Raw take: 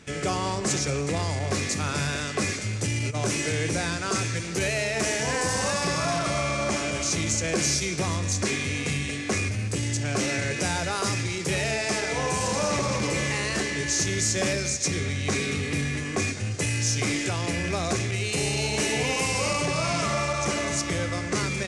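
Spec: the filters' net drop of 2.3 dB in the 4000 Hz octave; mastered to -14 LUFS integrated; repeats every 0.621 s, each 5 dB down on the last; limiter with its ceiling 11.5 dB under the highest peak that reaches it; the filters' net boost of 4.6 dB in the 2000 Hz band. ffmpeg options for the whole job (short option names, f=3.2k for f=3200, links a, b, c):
-af "equalizer=f=2k:t=o:g=7,equalizer=f=4k:t=o:g=-5.5,alimiter=level_in=0.5dB:limit=-24dB:level=0:latency=1,volume=-0.5dB,aecho=1:1:621|1242|1863|2484|3105|3726|4347:0.562|0.315|0.176|0.0988|0.0553|0.031|0.0173,volume=16.5dB"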